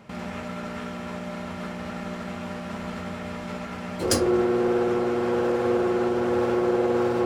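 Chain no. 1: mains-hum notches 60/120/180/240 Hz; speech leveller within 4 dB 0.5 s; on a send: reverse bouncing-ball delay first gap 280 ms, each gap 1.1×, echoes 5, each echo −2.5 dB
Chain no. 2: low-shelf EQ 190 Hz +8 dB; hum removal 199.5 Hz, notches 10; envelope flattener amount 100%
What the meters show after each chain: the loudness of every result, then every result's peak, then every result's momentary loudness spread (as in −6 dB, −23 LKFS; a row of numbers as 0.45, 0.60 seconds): −25.5, −17.5 LKFS; −10.5, −5.5 dBFS; 6, 0 LU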